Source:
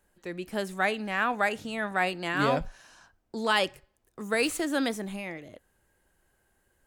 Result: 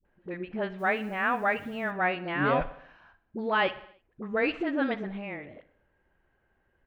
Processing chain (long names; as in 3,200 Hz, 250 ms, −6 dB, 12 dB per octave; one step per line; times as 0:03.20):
low-pass filter 2,700 Hz 24 dB per octave
all-pass dispersion highs, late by 52 ms, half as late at 510 Hz
0:00.78–0:01.90: background noise white −66 dBFS
on a send: repeating echo 61 ms, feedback 60%, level −18 dB